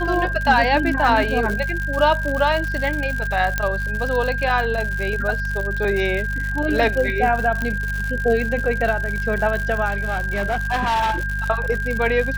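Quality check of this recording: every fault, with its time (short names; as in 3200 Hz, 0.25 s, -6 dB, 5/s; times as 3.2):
crackle 120/s -24 dBFS
hum 50 Hz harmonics 4 -26 dBFS
tone 1600 Hz -25 dBFS
3.58 pop -6 dBFS
7.62 pop -12 dBFS
9.88–11.23 clipped -17 dBFS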